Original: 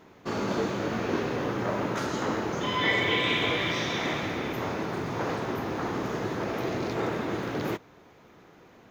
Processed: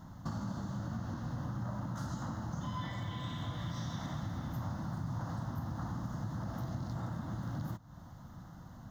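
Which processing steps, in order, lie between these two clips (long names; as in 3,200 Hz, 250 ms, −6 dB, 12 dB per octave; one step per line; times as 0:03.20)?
bass and treble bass +15 dB, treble +3 dB
downward compressor 8 to 1, threshold −33 dBFS, peak gain reduction 15.5 dB
phaser with its sweep stopped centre 1,000 Hz, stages 4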